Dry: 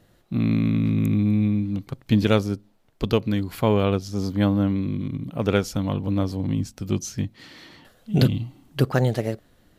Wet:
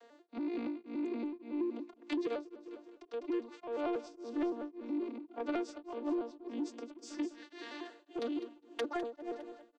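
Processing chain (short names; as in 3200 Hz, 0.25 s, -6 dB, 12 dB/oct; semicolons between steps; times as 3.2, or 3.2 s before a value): arpeggiated vocoder major triad, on A#3, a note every 94 ms; steep high-pass 320 Hz 48 dB/oct; in parallel at -2 dB: limiter -20.5 dBFS, peak gain reduction 8 dB; on the sum: compressor 5:1, threshold -36 dBFS, peak gain reduction 19 dB; soft clip -31.5 dBFS, distortion -18 dB; feedback echo 0.204 s, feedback 51%, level -13 dB; beating tremolo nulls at 1.8 Hz; gain +4 dB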